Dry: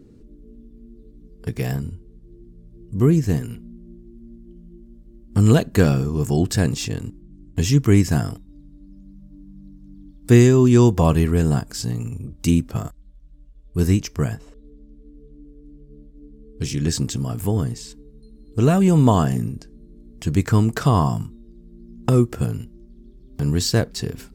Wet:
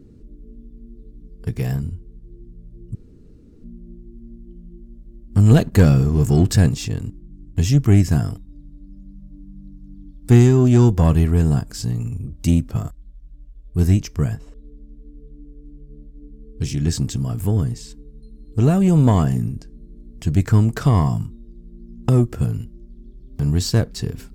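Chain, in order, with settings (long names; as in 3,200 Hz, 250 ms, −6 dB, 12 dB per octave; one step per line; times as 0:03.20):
one-sided soft clipper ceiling −8 dBFS
0:02.95–0:03.64: fill with room tone
low-shelf EQ 160 Hz +8.5 dB
0:05.51–0:06.69: leveller curve on the samples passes 1
level −2 dB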